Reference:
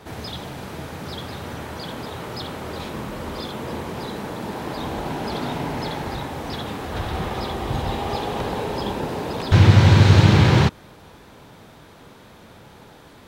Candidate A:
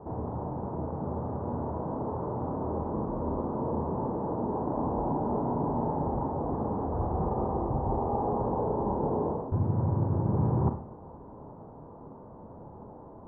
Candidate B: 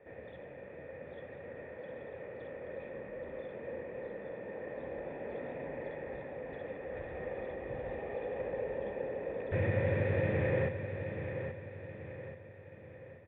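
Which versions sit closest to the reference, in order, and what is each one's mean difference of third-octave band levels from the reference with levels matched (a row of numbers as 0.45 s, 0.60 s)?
B, A; 9.5 dB, 13.0 dB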